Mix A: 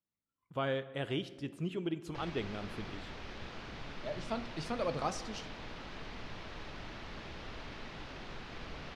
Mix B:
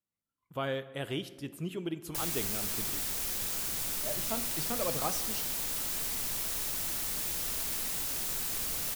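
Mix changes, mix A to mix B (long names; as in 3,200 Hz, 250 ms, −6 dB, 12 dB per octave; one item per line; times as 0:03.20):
background: remove high-frequency loss of the air 280 metres
master: remove high-frequency loss of the air 93 metres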